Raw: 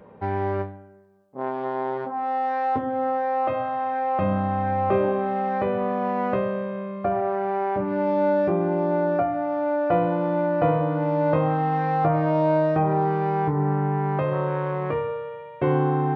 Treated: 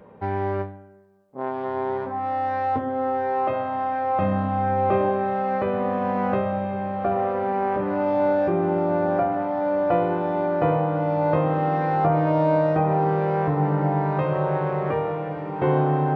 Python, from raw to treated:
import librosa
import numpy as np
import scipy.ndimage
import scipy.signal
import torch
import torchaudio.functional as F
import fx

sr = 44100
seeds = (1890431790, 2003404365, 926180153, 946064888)

y = fx.echo_diffused(x, sr, ms=1746, feedback_pct=62, wet_db=-8.5)